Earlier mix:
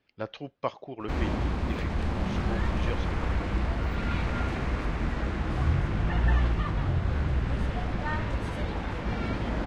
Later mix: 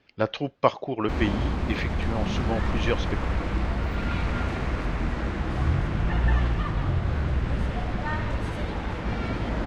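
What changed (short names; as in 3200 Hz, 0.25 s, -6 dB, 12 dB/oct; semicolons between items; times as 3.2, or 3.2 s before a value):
speech +10.0 dB; reverb: on, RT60 1.1 s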